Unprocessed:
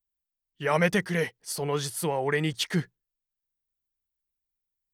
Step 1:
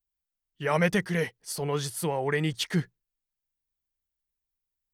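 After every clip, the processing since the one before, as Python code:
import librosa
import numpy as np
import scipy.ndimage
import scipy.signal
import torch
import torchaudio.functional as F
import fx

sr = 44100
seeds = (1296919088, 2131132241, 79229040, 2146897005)

y = fx.low_shelf(x, sr, hz=140.0, db=5.0)
y = F.gain(torch.from_numpy(y), -1.5).numpy()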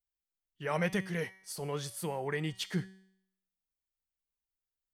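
y = fx.comb_fb(x, sr, f0_hz=190.0, decay_s=0.7, harmonics='all', damping=0.0, mix_pct=60)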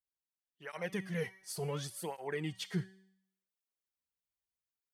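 y = fx.rider(x, sr, range_db=10, speed_s=0.5)
y = fx.flanger_cancel(y, sr, hz=0.69, depth_ms=4.5)
y = F.gain(torch.from_numpy(y), -1.0).numpy()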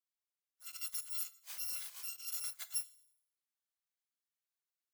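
y = fx.bit_reversed(x, sr, seeds[0], block=256)
y = scipy.signal.sosfilt(scipy.signal.butter(2, 1000.0, 'highpass', fs=sr, output='sos'), y)
y = F.gain(torch.from_numpy(y), -3.5).numpy()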